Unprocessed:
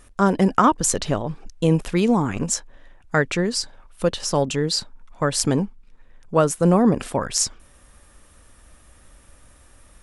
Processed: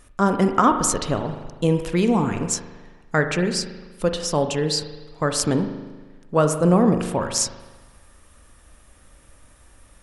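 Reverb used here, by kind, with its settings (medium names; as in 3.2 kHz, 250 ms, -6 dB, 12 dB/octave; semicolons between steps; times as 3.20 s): spring tank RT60 1.3 s, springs 39 ms, chirp 40 ms, DRR 7 dB; trim -1 dB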